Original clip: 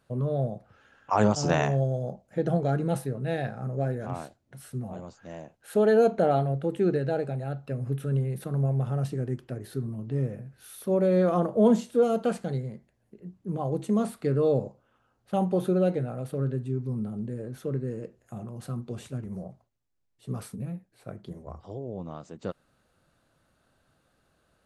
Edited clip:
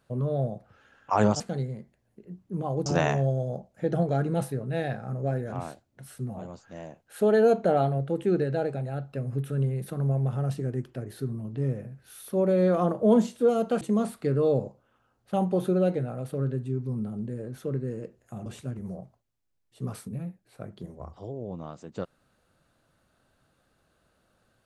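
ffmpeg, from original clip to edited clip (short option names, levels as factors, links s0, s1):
-filter_complex "[0:a]asplit=5[s0][s1][s2][s3][s4];[s0]atrim=end=1.402[s5];[s1]atrim=start=12.348:end=13.812[s6];[s2]atrim=start=1.398:end=12.352[s7];[s3]atrim=start=13.808:end=18.462[s8];[s4]atrim=start=18.928[s9];[s5][s6]acrossfade=d=0.004:c1=hsin:c2=hsin[s10];[s10][s7]acrossfade=d=0.004:c1=hsin:c2=hsin[s11];[s11][s8]acrossfade=d=0.004:c1=hsin:c2=hsin[s12];[s12][s9]acrossfade=d=0.004:c1=hsin:c2=hsin"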